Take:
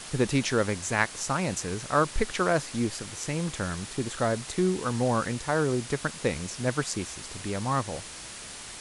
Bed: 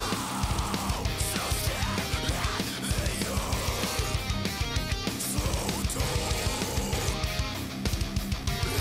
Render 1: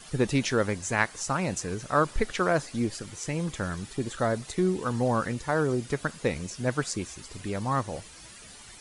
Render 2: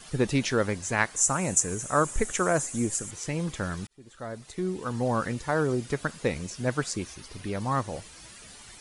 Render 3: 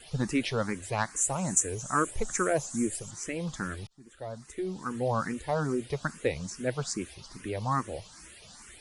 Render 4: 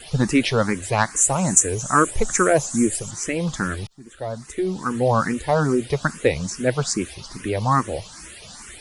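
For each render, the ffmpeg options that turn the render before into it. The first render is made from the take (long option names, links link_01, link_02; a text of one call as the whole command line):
ffmpeg -i in.wav -af "afftdn=noise_reduction=11:noise_floor=-42" out.wav
ffmpeg -i in.wav -filter_complex "[0:a]asettb=1/sr,asplit=3[link_01][link_02][link_03];[link_01]atrim=end=1.164[link_04];[link_02]atrim=start=1.16:end=3.11,asetpts=PTS-STARTPTS,afade=type=in:duration=0.004:curve=qsin,afade=type=out:start_time=1.946:duration=0.004:curve=qsin,highshelf=frequency=5700:width_type=q:width=3:gain=8[link_05];[link_03]atrim=start=3.106[link_06];[link_04][link_05]acrossfade=duration=0.004:curve1=hsin:curve2=qsin[link_07];[link_07][link_06]acrossfade=duration=0.004:curve1=qsin:curve2=hsin,asettb=1/sr,asplit=3[link_08][link_09][link_10];[link_08]atrim=end=7.044[link_11];[link_09]atrim=start=7.04:end=7.6,asetpts=PTS-STARTPTS,afade=type=in:duration=0.004:curve=qsin,afade=type=out:start_time=0.556:duration=0.004:curve=qsin,equalizer=frequency=7500:width_type=o:width=0.22:gain=-9.5[link_12];[link_10]atrim=start=7.596[link_13];[link_11][link_12]acrossfade=duration=0.004:curve1=hsin:curve2=qsin[link_14];[link_14][link_13]acrossfade=duration=0.004:curve1=qsin:curve2=hsin,asplit=2[link_15][link_16];[link_15]atrim=end=3.87,asetpts=PTS-STARTPTS,afade=type=out:start_time=3.866:duration=0.004:curve=hsin[link_17];[link_16]atrim=start=3.87,asetpts=PTS-STARTPTS,afade=type=in:duration=1.4[link_18];[link_17][link_18]concat=n=2:v=0:a=1" out.wav
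ffmpeg -i in.wav -filter_complex "[0:a]asoftclip=type=tanh:threshold=-8dB,asplit=2[link_01][link_02];[link_02]afreqshift=2.4[link_03];[link_01][link_03]amix=inputs=2:normalize=1" out.wav
ffmpeg -i in.wav -af "volume=10dB,alimiter=limit=-1dB:level=0:latency=1" out.wav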